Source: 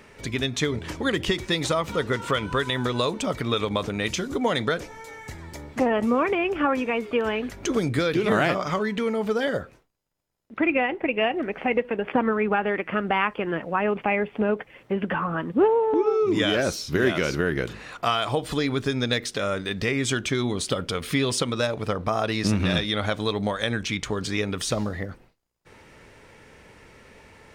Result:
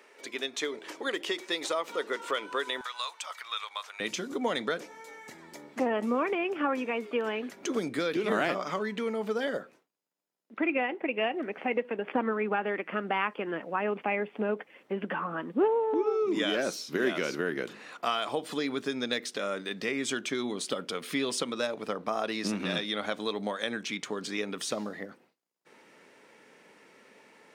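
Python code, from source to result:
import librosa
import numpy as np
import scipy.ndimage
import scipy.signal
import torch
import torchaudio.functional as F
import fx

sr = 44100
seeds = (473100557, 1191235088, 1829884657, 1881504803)

y = fx.highpass(x, sr, hz=fx.steps((0.0, 330.0), (2.81, 930.0), (4.0, 200.0)), slope=24)
y = F.gain(torch.from_numpy(y), -6.0).numpy()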